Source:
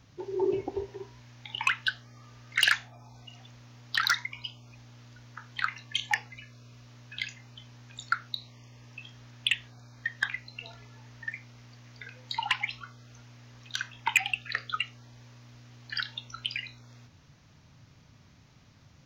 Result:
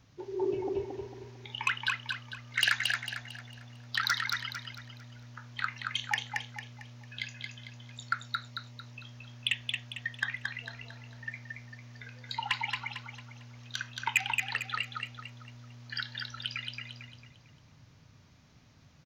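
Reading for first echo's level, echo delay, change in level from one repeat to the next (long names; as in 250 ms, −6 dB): −4.0 dB, 225 ms, −8.0 dB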